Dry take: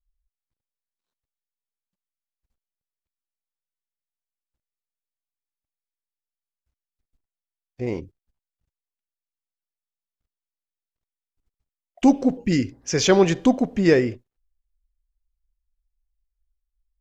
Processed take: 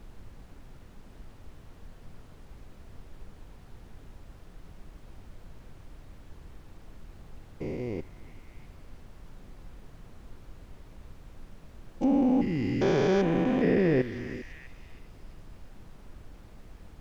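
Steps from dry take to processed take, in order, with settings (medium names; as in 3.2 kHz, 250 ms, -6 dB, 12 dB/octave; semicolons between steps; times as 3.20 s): spectrogram pixelated in time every 400 ms; low-pass that closes with the level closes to 2.6 kHz, closed at -23.5 dBFS; added noise brown -45 dBFS; repeats whose band climbs or falls 327 ms, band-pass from 1.4 kHz, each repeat 0.7 oct, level -8 dB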